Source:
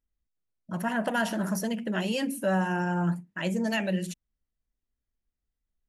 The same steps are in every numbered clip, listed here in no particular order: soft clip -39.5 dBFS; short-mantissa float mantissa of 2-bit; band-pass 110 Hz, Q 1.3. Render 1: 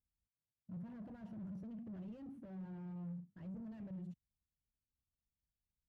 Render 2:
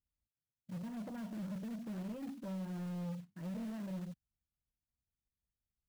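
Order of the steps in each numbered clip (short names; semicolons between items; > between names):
soft clip > short-mantissa float > band-pass; band-pass > soft clip > short-mantissa float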